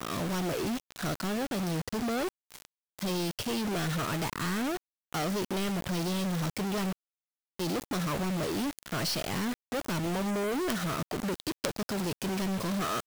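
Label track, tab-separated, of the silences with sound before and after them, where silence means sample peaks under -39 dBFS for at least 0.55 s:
6.930000	7.590000	silence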